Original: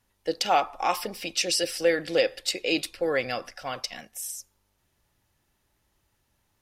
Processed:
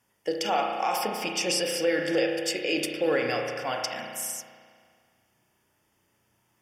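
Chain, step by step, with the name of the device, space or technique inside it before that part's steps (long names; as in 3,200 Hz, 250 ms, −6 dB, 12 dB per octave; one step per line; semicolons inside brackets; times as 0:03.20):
PA system with an anti-feedback notch (high-pass filter 130 Hz 12 dB per octave; Butterworth band-reject 4,000 Hz, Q 4.7; brickwall limiter −19.5 dBFS, peak gain reduction 10 dB)
spring reverb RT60 2 s, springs 33 ms, chirp 40 ms, DRR 1.5 dB
level +2 dB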